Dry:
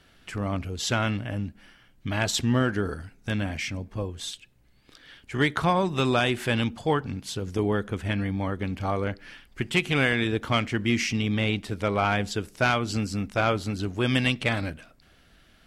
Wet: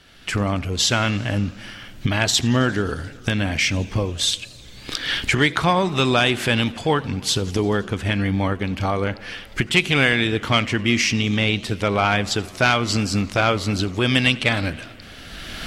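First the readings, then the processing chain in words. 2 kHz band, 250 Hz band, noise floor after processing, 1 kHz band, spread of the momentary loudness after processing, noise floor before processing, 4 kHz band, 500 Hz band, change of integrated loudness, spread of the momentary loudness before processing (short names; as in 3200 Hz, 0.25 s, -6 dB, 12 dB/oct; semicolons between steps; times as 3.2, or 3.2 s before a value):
+7.0 dB, +5.0 dB, -41 dBFS, +5.0 dB, 11 LU, -59 dBFS, +10.0 dB, +4.5 dB, +6.0 dB, 11 LU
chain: recorder AGC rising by 20 dB/s; bell 4200 Hz +5 dB 2.2 oct; warbling echo 88 ms, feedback 79%, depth 202 cents, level -22.5 dB; gain +4 dB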